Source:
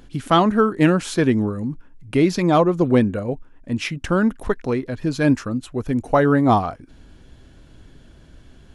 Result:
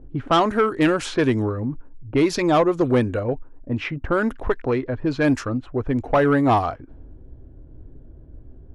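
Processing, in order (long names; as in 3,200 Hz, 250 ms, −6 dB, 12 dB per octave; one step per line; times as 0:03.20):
low-pass that shuts in the quiet parts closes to 370 Hz, open at −13.5 dBFS
parametric band 190 Hz −13 dB 0.5 octaves
in parallel at −2 dB: downward compressor, threshold −27 dBFS, peak gain reduction 14.5 dB
on the sum: soft clipping −9.5 dBFS, distortion −17 dB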